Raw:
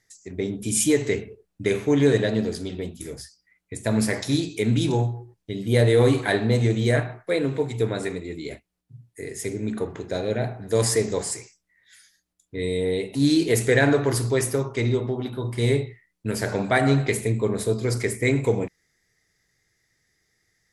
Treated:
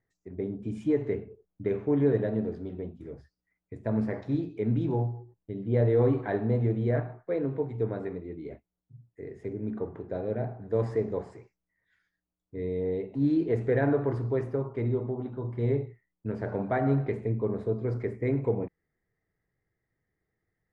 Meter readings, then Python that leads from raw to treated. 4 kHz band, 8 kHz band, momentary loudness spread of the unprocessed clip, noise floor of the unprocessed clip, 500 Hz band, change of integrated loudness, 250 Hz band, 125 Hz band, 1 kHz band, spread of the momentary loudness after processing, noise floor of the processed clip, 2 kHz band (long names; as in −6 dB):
below −25 dB, below −40 dB, 14 LU, −75 dBFS, −5.5 dB, −6.0 dB, −5.5 dB, −5.5 dB, −7.0 dB, 15 LU, below −85 dBFS, −15.0 dB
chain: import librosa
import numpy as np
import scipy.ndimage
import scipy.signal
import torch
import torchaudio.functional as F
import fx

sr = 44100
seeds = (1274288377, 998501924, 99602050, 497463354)

y = scipy.signal.sosfilt(scipy.signal.butter(2, 1100.0, 'lowpass', fs=sr, output='sos'), x)
y = y * 10.0 ** (-5.5 / 20.0)